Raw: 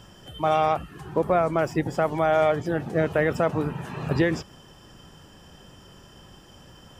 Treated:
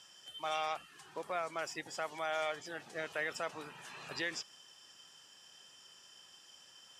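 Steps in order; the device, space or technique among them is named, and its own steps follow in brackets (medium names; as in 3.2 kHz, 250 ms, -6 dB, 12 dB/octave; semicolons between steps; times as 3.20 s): piezo pickup straight into a mixer (low-pass 6.4 kHz 12 dB/octave; differentiator); trim +3.5 dB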